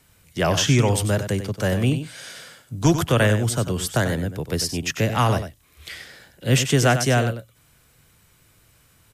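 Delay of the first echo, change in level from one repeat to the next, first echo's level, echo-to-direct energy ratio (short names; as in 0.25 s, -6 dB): 95 ms, no steady repeat, -10.0 dB, -10.0 dB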